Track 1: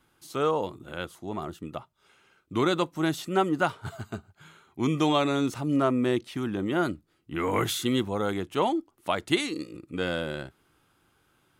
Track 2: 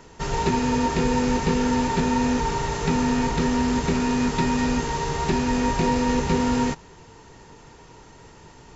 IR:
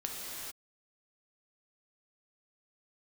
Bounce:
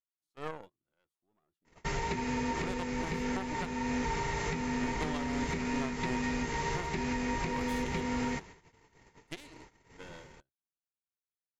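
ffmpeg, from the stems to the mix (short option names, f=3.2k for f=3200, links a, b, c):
-filter_complex "[0:a]aeval=exprs='0.335*(cos(1*acos(clip(val(0)/0.335,-1,1)))-cos(1*PI/2))+0.15*(cos(2*acos(clip(val(0)/0.335,-1,1)))-cos(2*PI/2))+0.0668*(cos(3*acos(clip(val(0)/0.335,-1,1)))-cos(3*PI/2))+0.00237*(cos(5*acos(clip(val(0)/0.335,-1,1)))-cos(5*PI/2))+0.0119*(cos(7*acos(clip(val(0)/0.335,-1,1)))-cos(7*PI/2))':c=same,volume=-8.5dB,asplit=3[a][b][c];[a]atrim=end=8.5,asetpts=PTS-STARTPTS,afade=t=out:st=8.496:d=0.004:c=hsin[d];[b]atrim=start=8.5:end=9.22,asetpts=PTS-STARTPTS,volume=0[e];[c]atrim=start=9.22,asetpts=PTS-STARTPTS,afade=t=in:d=0.004:c=hsin[f];[d][e][f]concat=n=3:v=0:a=1[g];[1:a]equalizer=f=2.1k:t=o:w=0.34:g=11.5,acompressor=threshold=-23dB:ratio=6,adelay=1650,volume=-5.5dB[h];[g][h]amix=inputs=2:normalize=0,agate=range=-22dB:threshold=-49dB:ratio=16:detection=peak,alimiter=limit=-22.5dB:level=0:latency=1:release=292"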